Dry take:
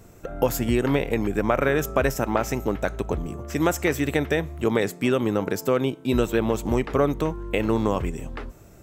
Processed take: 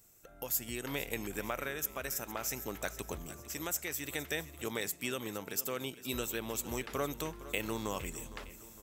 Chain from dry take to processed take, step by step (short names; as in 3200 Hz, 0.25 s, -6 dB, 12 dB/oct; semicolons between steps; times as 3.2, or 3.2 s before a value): pre-emphasis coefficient 0.9; vocal rider within 4 dB 0.5 s; feedback echo 0.46 s, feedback 49%, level -15.5 dB